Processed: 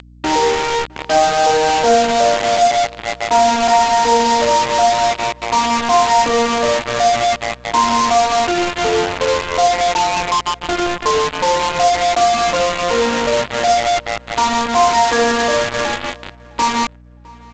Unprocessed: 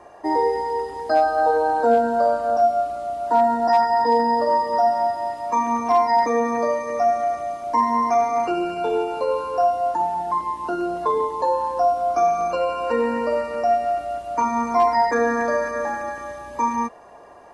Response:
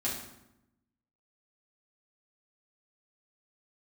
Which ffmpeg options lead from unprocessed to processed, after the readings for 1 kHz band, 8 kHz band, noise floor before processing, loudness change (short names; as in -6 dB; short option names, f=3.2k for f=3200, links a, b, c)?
+5.0 dB, n/a, -40 dBFS, +6.0 dB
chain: -filter_complex "[0:a]bandreject=f=79.41:t=h:w=4,bandreject=f=158.82:t=h:w=4,bandreject=f=238.23:t=h:w=4,bandreject=f=317.64:t=h:w=4,bandreject=f=397.05:t=h:w=4,bandreject=f=476.46:t=h:w=4,bandreject=f=555.87:t=h:w=4,bandreject=f=635.28:t=h:w=4,bandreject=f=714.69:t=h:w=4,bandreject=f=794.1:t=h:w=4,bandreject=f=873.51:t=h:w=4,bandreject=f=952.92:t=h:w=4,bandreject=f=1.03233k:t=h:w=4,bandreject=f=1.11174k:t=h:w=4,acompressor=mode=upward:threshold=-25dB:ratio=2.5,aresample=16000,acrusher=bits=3:mix=0:aa=0.000001,aresample=44100,aeval=exprs='val(0)+0.00501*(sin(2*PI*60*n/s)+sin(2*PI*2*60*n/s)/2+sin(2*PI*3*60*n/s)/3+sin(2*PI*4*60*n/s)/4+sin(2*PI*5*60*n/s)/5)':c=same,asplit=2[a][b];[b]adelay=660,lowpass=f=1.9k:p=1,volume=-23.5dB,asplit=2[c][d];[d]adelay=660,lowpass=f=1.9k:p=1,volume=0.24[e];[c][e]amix=inputs=2:normalize=0[f];[a][f]amix=inputs=2:normalize=0,acontrast=37" -ar 16000 -c:a g722